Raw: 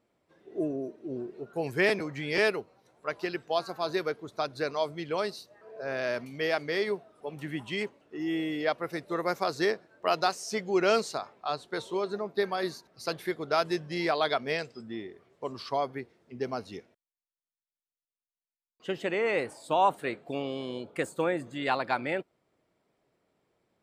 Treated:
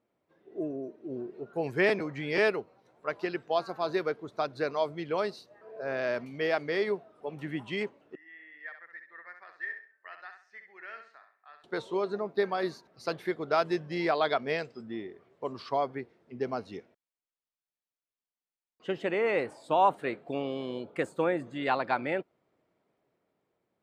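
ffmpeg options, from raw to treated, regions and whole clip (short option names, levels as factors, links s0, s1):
-filter_complex "[0:a]asettb=1/sr,asplit=3[s0][s1][s2];[s0]atrim=end=8.154[s3];[s1]atrim=start=8.15:end=11.64,asetpts=PTS-STARTPTS,afade=t=in:d=0.004:c=qsin,afade=t=out:st=3.486:d=0.004:c=qsin,bandpass=f=1800:t=q:w=11,aecho=1:1:66|132|198|264:0.422|0.139|0.0459|0.0152,atrim=end_sample=153909[s4];[s2]atrim=start=11.636[s5];[s3][s4]acrossfade=d=0.004:c1=hsin:c2=qsin[s6];[s6][s5]acrossfade=d=0.004:c1=qsin:c2=hsin,dynaudnorm=f=170:g=13:m=1.68,lowpass=f=2500:p=1,lowshelf=f=66:g=-9.5,volume=0.668"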